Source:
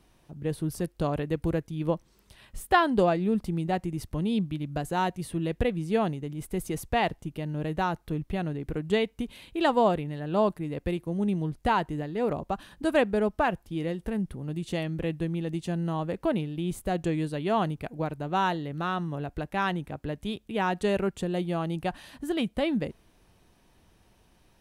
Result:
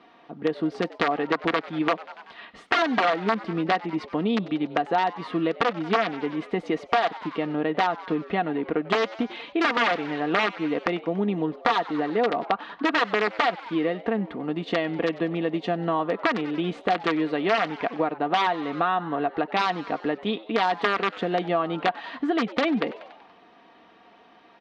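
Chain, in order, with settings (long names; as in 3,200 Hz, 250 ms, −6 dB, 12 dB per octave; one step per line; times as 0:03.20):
wrap-around overflow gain 18 dB
loudspeaker in its box 290–3,900 Hz, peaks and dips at 320 Hz +7 dB, 720 Hz +7 dB, 1,200 Hz +8 dB, 1,900 Hz +5 dB
comb filter 4.3 ms, depth 47%
on a send: echo with shifted repeats 95 ms, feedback 59%, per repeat +110 Hz, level −21 dB
on the sum: downward compressor 4 to 1, threshold −29 dBFS, peak gain reduction 12.5 dB
level +8 dB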